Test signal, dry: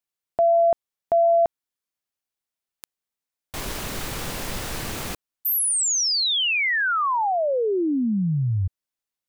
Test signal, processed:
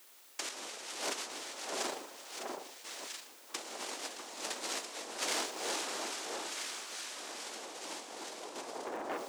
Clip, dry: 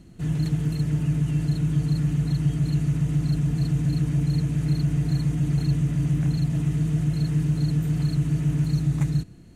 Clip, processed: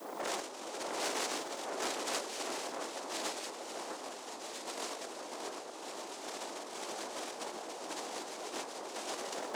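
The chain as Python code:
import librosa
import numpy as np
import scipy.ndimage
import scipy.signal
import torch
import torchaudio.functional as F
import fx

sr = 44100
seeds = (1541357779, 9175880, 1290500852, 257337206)

p1 = scipy.signal.sosfilt(scipy.signal.cheby1(2, 1.0, 4300.0, 'lowpass', fs=sr, output='sos'), x)
p2 = fx.notch(p1, sr, hz=400.0, q=12.0)
p3 = fx.rev_gated(p2, sr, seeds[0], gate_ms=430, shape='falling', drr_db=-4.5)
p4 = fx.fold_sine(p3, sr, drive_db=19, ceiling_db=-6.5)
p5 = p3 + F.gain(torch.from_numpy(p4), -7.0).numpy()
p6 = fx.resonator_bank(p5, sr, root=40, chord='minor', decay_s=0.62)
p7 = fx.cheby_harmonics(p6, sr, harmonics=(6, 8), levels_db=(-17, -8), full_scale_db=-16.5)
p8 = fx.noise_vocoder(p7, sr, seeds[1], bands=2)
p9 = fx.dmg_noise_colour(p8, sr, seeds[2], colour='white', level_db=-64.0)
p10 = scipy.signal.sosfilt(scipy.signal.butter(4, 290.0, 'highpass', fs=sr, output='sos'), p9)
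p11 = fx.over_compress(p10, sr, threshold_db=-36.0, ratio=-0.5)
p12 = fx.echo_alternate(p11, sr, ms=648, hz=1500.0, feedback_pct=59, wet_db=-4)
p13 = fx.transformer_sat(p12, sr, knee_hz=2800.0)
y = F.gain(torch.from_numpy(p13), -3.0).numpy()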